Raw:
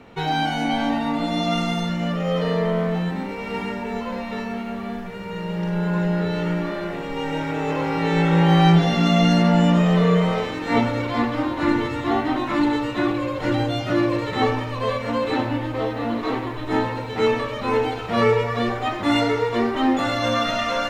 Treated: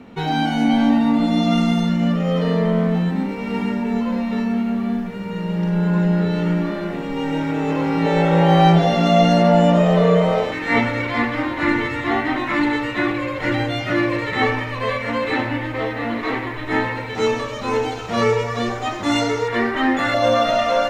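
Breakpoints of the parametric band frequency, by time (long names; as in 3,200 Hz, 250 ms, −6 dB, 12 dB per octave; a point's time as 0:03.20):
parametric band +10.5 dB 0.7 octaves
230 Hz
from 0:08.06 610 Hz
from 0:10.52 2,000 Hz
from 0:17.15 6,400 Hz
from 0:19.48 1,800 Hz
from 0:20.14 610 Hz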